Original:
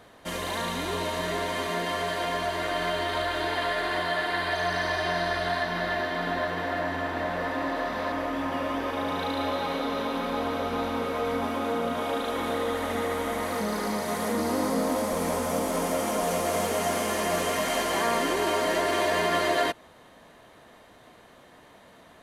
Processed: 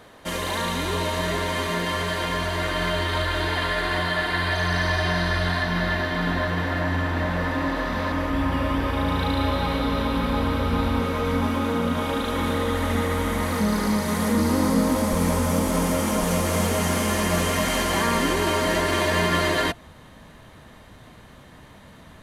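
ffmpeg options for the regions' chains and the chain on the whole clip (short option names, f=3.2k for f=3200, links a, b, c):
-filter_complex "[0:a]asettb=1/sr,asplit=3[a][b][c];[a]atrim=end=8.304[d];[b]atrim=start=8.3:end=11,asetpts=PTS-STARTPTS,afade=t=in:d=0.004:c=qsin,afade=t=out:st=2.696:d=0.004:c=qsin,equalizer=f=6.3k:w=7.6:g=-7,aeval=exprs='val(0)+0.00562*(sin(2*PI*60*n/s)+sin(2*PI*2*60*n/s)/2+sin(2*PI*3*60*n/s)/3+sin(2*PI*4*60*n/s)/4+sin(2*PI*5*60*n/s)/5)':c=same[e];[c]atrim=start=10.996[f];[d][e]acrossfade=d=0.004:c1=hsin:c2=qsin[g];[g][f]acrossfade=d=0.004:c1=qsin:c2=hsin,bandreject=f=700:w=18,asubboost=boost=4:cutoff=190,volume=4.5dB"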